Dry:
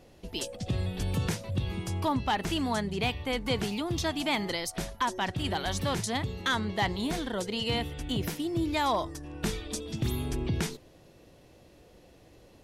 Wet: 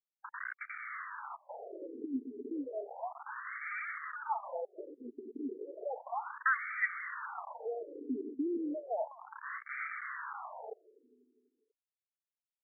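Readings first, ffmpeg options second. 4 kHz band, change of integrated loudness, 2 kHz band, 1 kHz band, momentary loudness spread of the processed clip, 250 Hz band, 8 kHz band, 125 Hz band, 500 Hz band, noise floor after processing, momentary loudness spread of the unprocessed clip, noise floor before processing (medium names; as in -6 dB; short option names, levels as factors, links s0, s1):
under -40 dB, -8.5 dB, -2.0 dB, -7.5 dB, 12 LU, -9.5 dB, under -40 dB, under -40 dB, -7.5 dB, under -85 dBFS, 6 LU, -57 dBFS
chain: -filter_complex "[0:a]afwtdn=0.0224,afftfilt=real='re*gte(hypot(re,im),0.0501)':imag='im*gte(hypot(re,im),0.0501)':win_size=1024:overlap=0.75,aecho=1:1:4.6:0.51,adynamicequalizer=threshold=0.00355:dfrequency=370:dqfactor=4.2:tfrequency=370:tqfactor=4.2:attack=5:release=100:ratio=0.375:range=3:mode=cutabove:tftype=bell,acrossover=split=150|3000[s0][s1][s2];[s0]acompressor=threshold=0.0316:ratio=10[s3];[s3][s1][s2]amix=inputs=3:normalize=0,alimiter=level_in=1.19:limit=0.0631:level=0:latency=1:release=133,volume=0.841,acompressor=threshold=0.0141:ratio=2,aresample=16000,acrusher=bits=6:mix=0:aa=0.000001,aresample=44100,asoftclip=type=tanh:threshold=0.0355,crystalizer=i=8.5:c=0,aecho=1:1:246|492|738|984:0.0708|0.0396|0.0222|0.0124,afftfilt=real='re*between(b*sr/1024,310*pow(1700/310,0.5+0.5*sin(2*PI*0.33*pts/sr))/1.41,310*pow(1700/310,0.5+0.5*sin(2*PI*0.33*pts/sr))*1.41)':imag='im*between(b*sr/1024,310*pow(1700/310,0.5+0.5*sin(2*PI*0.33*pts/sr))/1.41,310*pow(1700/310,0.5+0.5*sin(2*PI*0.33*pts/sr))*1.41)':win_size=1024:overlap=0.75,volume=1.78"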